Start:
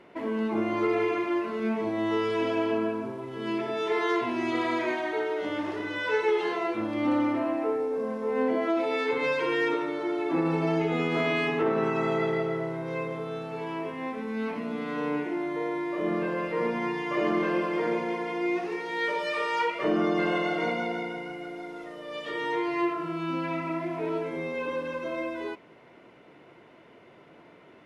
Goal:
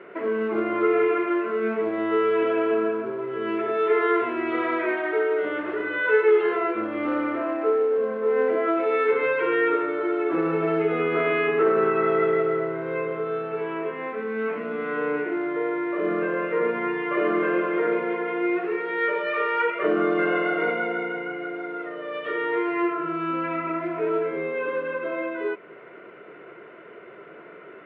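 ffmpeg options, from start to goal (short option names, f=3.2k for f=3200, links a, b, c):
-filter_complex "[0:a]asplit=2[a][b];[b]acompressor=threshold=-40dB:ratio=12,volume=1dB[c];[a][c]amix=inputs=2:normalize=0,acrusher=bits=5:mode=log:mix=0:aa=0.000001,highpass=210,equalizer=f=260:t=q:w=4:g=-9,equalizer=f=410:t=q:w=4:g=7,equalizer=f=860:t=q:w=4:g=-8,equalizer=f=1.4k:t=q:w=4:g=8,lowpass=f=2.6k:w=0.5412,lowpass=f=2.6k:w=1.3066,volume=1.5dB"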